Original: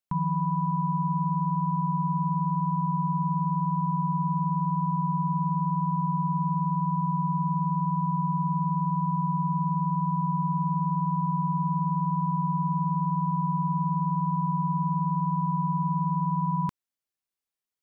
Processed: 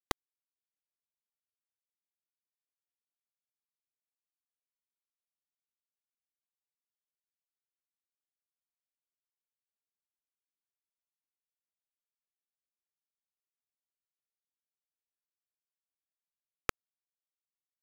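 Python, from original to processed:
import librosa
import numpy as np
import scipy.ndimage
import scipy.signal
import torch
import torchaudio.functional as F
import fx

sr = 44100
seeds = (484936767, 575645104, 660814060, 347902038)

y = fx.spec_gate(x, sr, threshold_db=-15, keep='weak')
y = fx.peak_eq(y, sr, hz=220.0, db=-7.0, octaves=0.66)
y = fx.quant_dither(y, sr, seeds[0], bits=6, dither='none')
y = F.gain(torch.from_numpy(y), 15.5).numpy()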